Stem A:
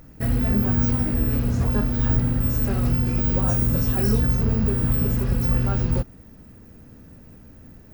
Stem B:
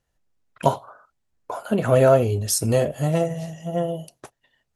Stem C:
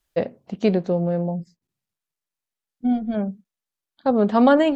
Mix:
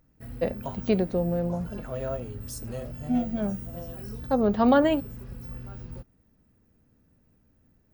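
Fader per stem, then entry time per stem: −18.5, −17.5, −4.5 decibels; 0.00, 0.00, 0.25 seconds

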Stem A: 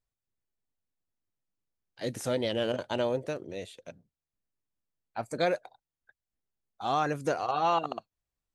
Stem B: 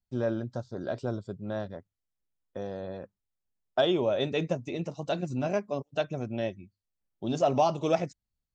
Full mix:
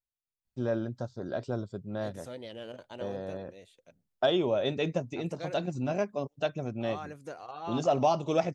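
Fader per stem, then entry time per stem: −13.0, −1.0 decibels; 0.00, 0.45 seconds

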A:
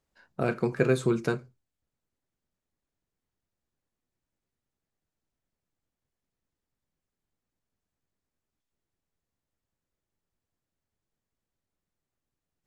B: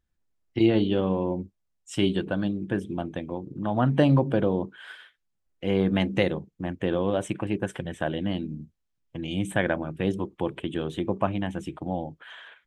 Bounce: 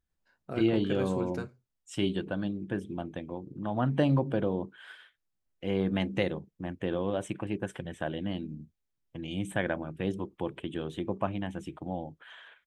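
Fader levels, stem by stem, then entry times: −10.0, −5.5 decibels; 0.10, 0.00 seconds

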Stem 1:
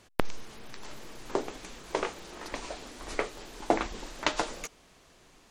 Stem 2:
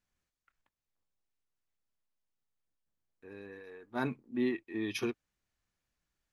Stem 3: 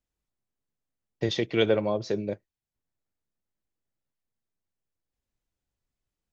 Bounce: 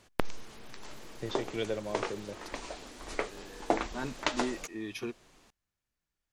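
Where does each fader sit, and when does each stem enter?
−2.5, −3.5, −11.0 decibels; 0.00, 0.00, 0.00 seconds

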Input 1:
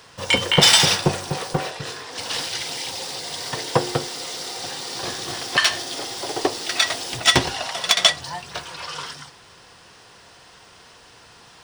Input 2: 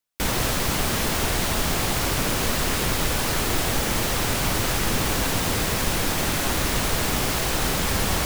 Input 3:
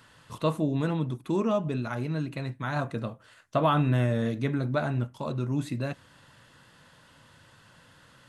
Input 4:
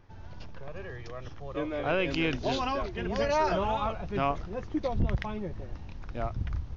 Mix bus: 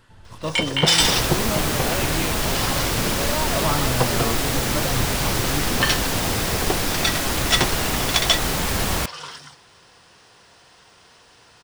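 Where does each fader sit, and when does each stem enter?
−3.5, +0.5, −2.0, −2.0 decibels; 0.25, 0.80, 0.00, 0.00 seconds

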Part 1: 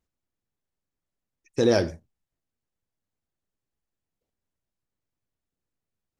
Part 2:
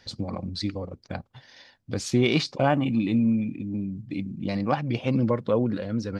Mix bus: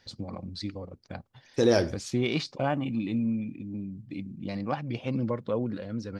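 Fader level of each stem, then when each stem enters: −1.5, −6.0 decibels; 0.00, 0.00 seconds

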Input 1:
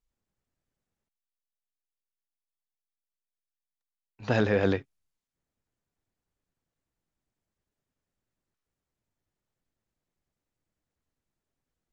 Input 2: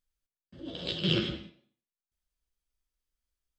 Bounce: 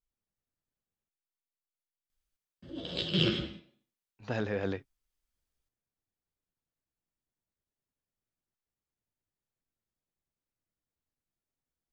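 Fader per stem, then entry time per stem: −8.5, 0.0 decibels; 0.00, 2.10 seconds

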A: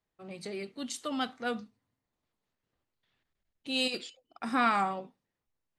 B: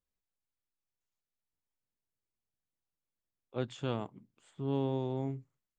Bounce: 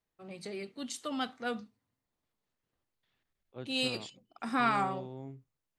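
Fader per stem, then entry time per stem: −2.0, −9.0 decibels; 0.00, 0.00 seconds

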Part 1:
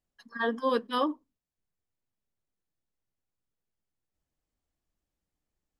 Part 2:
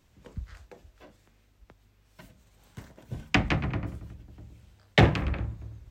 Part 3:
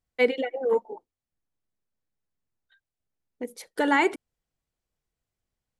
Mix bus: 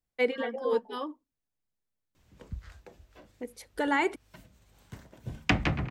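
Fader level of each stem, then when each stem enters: −8.5, −1.5, −5.0 decibels; 0.00, 2.15, 0.00 seconds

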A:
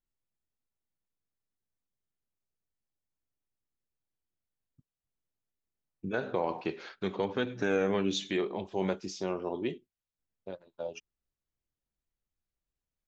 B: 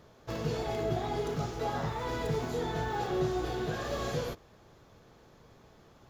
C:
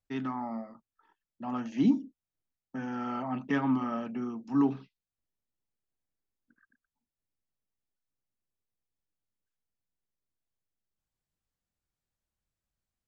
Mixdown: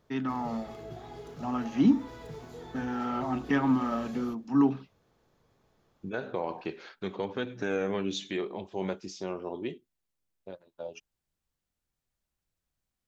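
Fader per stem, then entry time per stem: −2.0, −11.5, +2.5 decibels; 0.00, 0.00, 0.00 seconds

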